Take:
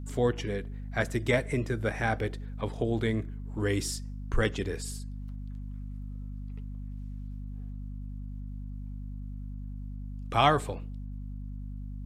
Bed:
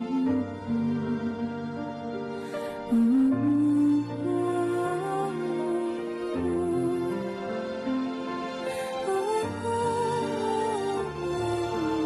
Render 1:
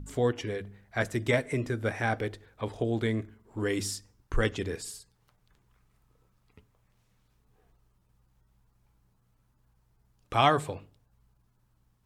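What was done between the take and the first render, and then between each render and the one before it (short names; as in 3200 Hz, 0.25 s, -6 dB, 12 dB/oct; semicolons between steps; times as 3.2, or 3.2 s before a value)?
de-hum 50 Hz, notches 5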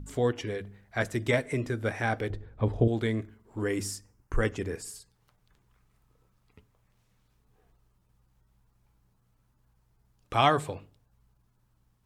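2.3–2.88 tilt -3.5 dB/oct; 3.63–4.96 bell 3700 Hz -10 dB 0.69 oct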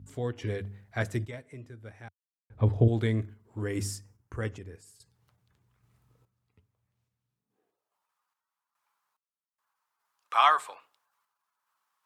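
random-step tremolo 2.4 Hz, depth 100%; high-pass sweep 90 Hz -> 1100 Hz, 7.19–8.09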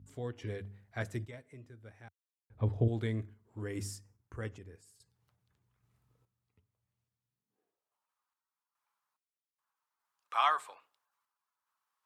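gain -7 dB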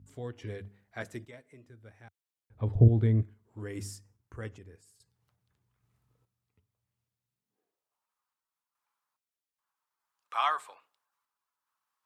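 0.68–1.68 bell 95 Hz -10 dB 0.99 oct; 2.75–3.23 tilt -3.5 dB/oct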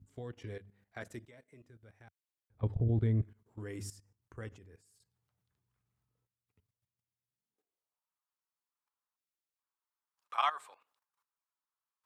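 level quantiser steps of 14 dB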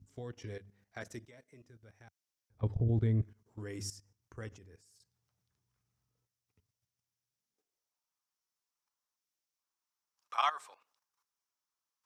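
bell 5700 Hz +9.5 dB 0.49 oct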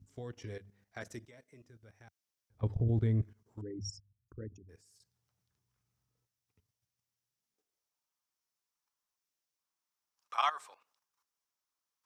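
3.61–4.69 formant sharpening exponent 3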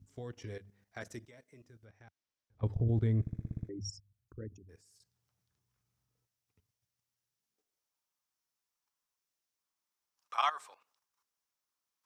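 1.85–2.63 air absorption 90 m; 3.21 stutter in place 0.06 s, 8 plays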